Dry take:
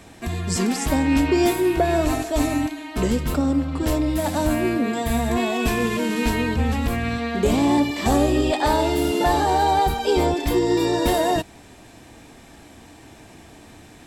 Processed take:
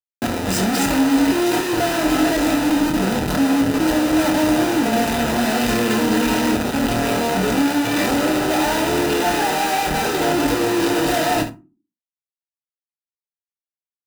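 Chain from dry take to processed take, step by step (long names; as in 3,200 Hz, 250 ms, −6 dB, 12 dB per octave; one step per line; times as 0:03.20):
0:04.10–0:04.83: high-pass filter 43 Hz 24 dB per octave
comparator with hysteresis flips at −32.5 dBFS
notch comb filter 1,100 Hz
ambience of single reflections 26 ms −7 dB, 72 ms −12.5 dB
on a send at −7.5 dB: convolution reverb RT60 0.35 s, pre-delay 3 ms
on the sum: level +2 dB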